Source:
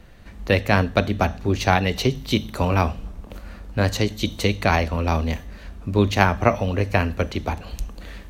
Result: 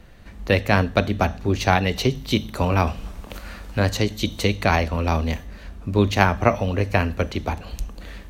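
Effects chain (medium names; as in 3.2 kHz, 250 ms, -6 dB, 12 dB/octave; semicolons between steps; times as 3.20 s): 2.87–5.35 s: tape noise reduction on one side only encoder only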